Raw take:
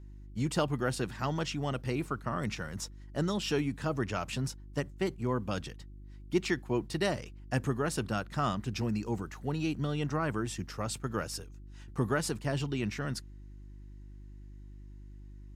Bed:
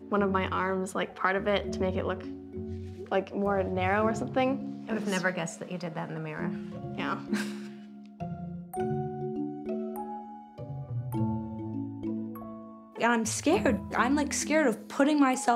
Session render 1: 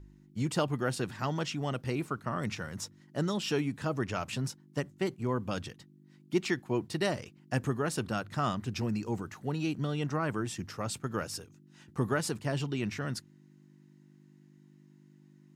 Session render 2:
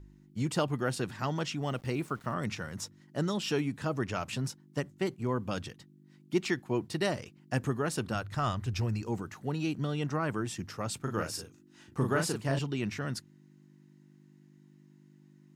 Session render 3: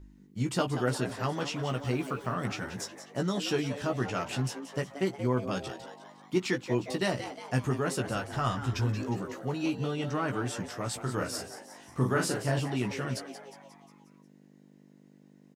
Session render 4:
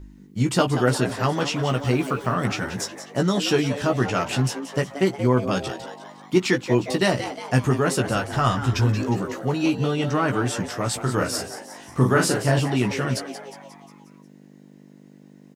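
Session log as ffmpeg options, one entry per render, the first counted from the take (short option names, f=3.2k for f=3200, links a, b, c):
-af "bandreject=f=50:t=h:w=4,bandreject=f=100:t=h:w=4"
-filter_complex "[0:a]asettb=1/sr,asplit=3[a][b][c];[a]atrim=end=1.664[d];[b]atrim=start=1.66:end=2.34,asetpts=PTS-STARTPTS,afade=t=in:d=0.004:c=qsin,afade=t=out:st=0.676:d=0.004:c=qsin,aeval=exprs='val(0)*gte(abs(val(0)),0.00224)':c=same[e];[c]atrim=start=2.336[f];[d][e]acrossfade=d=0.004:c1=hsin:c2=qsin[g];[g][f]acrossfade=d=0.004:c1=qsin:c2=hsin,asplit=3[h][i][j];[h]afade=t=out:st=8.14:d=0.02[k];[i]asubboost=boost=10:cutoff=63,afade=t=in:st=8.14:d=0.02,afade=t=out:st=9.01:d=0.02[l];[j]afade=t=in:st=9.01:d=0.02[m];[k][l][m]amix=inputs=3:normalize=0,asettb=1/sr,asplit=3[n][o][p];[n]atrim=end=10.974[q];[o]atrim=start=10.97:end=12.59,asetpts=PTS-STARTPTS,afade=t=in:d=0.004:c=qsin,afade=t=out:st=1.616:d=0.004:c=qsin,asplit=2[r][s];[s]adelay=37,volume=-4dB[t];[r][t]amix=inputs=2:normalize=0,atrim=end_sample=71442[u];[p]atrim=start=12.586[v];[q][u]acrossfade=d=0.004:c1=hsin:c2=qsin[w];[w][v]acrossfade=d=0.004:c1=qsin:c2=hsin"
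-filter_complex "[0:a]asplit=2[a][b];[b]adelay=16,volume=-5dB[c];[a][c]amix=inputs=2:normalize=0,asplit=2[d][e];[e]asplit=6[f][g][h][i][j][k];[f]adelay=179,afreqshift=140,volume=-11.5dB[l];[g]adelay=358,afreqshift=280,volume=-16.7dB[m];[h]adelay=537,afreqshift=420,volume=-21.9dB[n];[i]adelay=716,afreqshift=560,volume=-27.1dB[o];[j]adelay=895,afreqshift=700,volume=-32.3dB[p];[k]adelay=1074,afreqshift=840,volume=-37.5dB[q];[l][m][n][o][p][q]amix=inputs=6:normalize=0[r];[d][r]amix=inputs=2:normalize=0"
-af "volume=9dB"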